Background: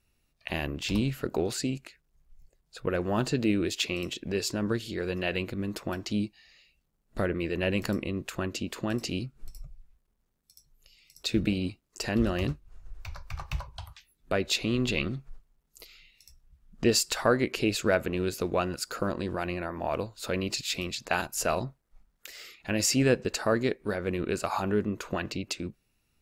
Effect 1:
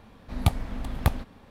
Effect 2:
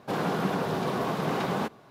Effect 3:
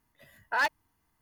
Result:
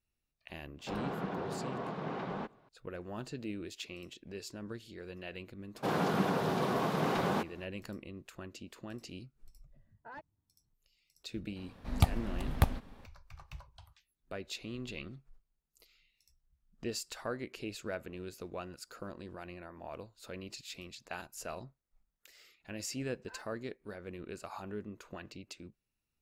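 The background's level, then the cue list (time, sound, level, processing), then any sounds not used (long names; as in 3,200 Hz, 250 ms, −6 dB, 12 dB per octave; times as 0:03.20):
background −14.5 dB
0:00.79: mix in 2 −10 dB + Bessel low-pass filter 2,700 Hz
0:05.75: mix in 2 −3 dB + high-pass filter 50 Hz
0:09.53: mix in 3 −1 dB + resonant band-pass 110 Hz, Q 1.1
0:11.56: mix in 1 −4 dB
0:22.75: mix in 3 −14 dB + tuned comb filter 520 Hz, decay 0.18 s, mix 90%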